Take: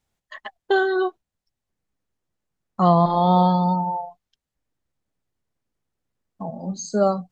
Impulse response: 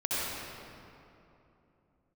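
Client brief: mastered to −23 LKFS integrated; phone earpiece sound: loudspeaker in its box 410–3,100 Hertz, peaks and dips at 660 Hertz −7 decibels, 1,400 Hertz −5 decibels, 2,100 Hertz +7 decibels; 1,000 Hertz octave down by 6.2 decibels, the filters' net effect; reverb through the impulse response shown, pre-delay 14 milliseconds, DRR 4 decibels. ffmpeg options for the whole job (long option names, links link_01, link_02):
-filter_complex "[0:a]equalizer=frequency=1000:width_type=o:gain=-4.5,asplit=2[link_01][link_02];[1:a]atrim=start_sample=2205,adelay=14[link_03];[link_02][link_03]afir=irnorm=-1:irlink=0,volume=-13.5dB[link_04];[link_01][link_04]amix=inputs=2:normalize=0,highpass=410,equalizer=frequency=660:width_type=q:width=4:gain=-7,equalizer=frequency=1400:width_type=q:width=4:gain=-5,equalizer=frequency=2100:width_type=q:width=4:gain=7,lowpass=frequency=3100:width=0.5412,lowpass=frequency=3100:width=1.3066,volume=5dB"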